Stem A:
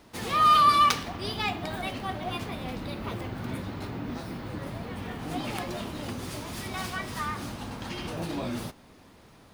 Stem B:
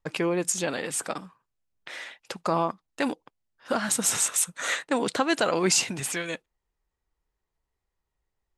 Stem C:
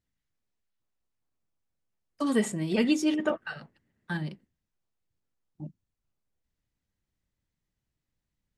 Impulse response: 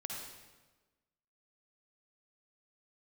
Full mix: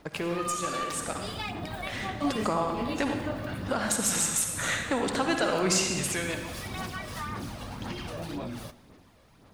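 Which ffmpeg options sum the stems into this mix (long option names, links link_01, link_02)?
-filter_complex "[0:a]aphaser=in_gain=1:out_gain=1:delay=1.8:decay=0.46:speed=1.9:type=sinusoidal,volume=-6dB,asplit=2[link_01][link_02];[link_02]volume=-17dB[link_03];[1:a]volume=-4.5dB,asplit=3[link_04][link_05][link_06];[link_05]volume=-3dB[link_07];[2:a]flanger=delay=22.5:depth=5.9:speed=0.27,volume=-0.5dB,asplit=2[link_08][link_09];[link_09]volume=-12.5dB[link_10];[link_06]apad=whole_len=378190[link_11];[link_08][link_11]sidechaincompress=threshold=-47dB:ratio=8:attack=16:release=513[link_12];[link_01][link_04]amix=inputs=2:normalize=0,aeval=exprs='0.282*(cos(1*acos(clip(val(0)/0.282,-1,1)))-cos(1*PI/2))+0.0447*(cos(6*acos(clip(val(0)/0.282,-1,1)))-cos(6*PI/2))+0.0355*(cos(8*acos(clip(val(0)/0.282,-1,1)))-cos(8*PI/2))':channel_layout=same,acompressor=threshold=-36dB:ratio=6,volume=0dB[link_13];[3:a]atrim=start_sample=2205[link_14];[link_03][link_07][link_10]amix=inputs=3:normalize=0[link_15];[link_15][link_14]afir=irnorm=-1:irlink=0[link_16];[link_12][link_13][link_16]amix=inputs=3:normalize=0,dynaudnorm=framelen=100:gausssize=21:maxgain=3.5dB"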